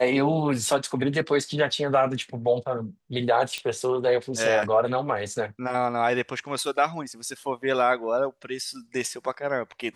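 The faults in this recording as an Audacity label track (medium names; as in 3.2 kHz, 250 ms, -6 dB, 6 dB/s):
3.580000	3.580000	pop -17 dBFS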